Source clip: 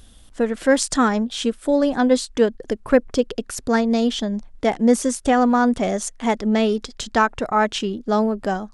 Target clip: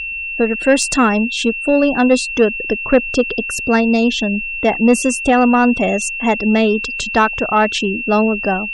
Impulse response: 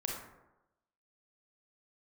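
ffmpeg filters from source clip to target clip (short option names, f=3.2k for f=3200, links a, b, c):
-af "afftfilt=real='re*gte(hypot(re,im),0.0178)':imag='im*gte(hypot(re,im),0.0178)':win_size=1024:overlap=0.75,acontrast=55,aeval=exprs='val(0)+0.0891*sin(2*PI*2700*n/s)':c=same,volume=-1dB"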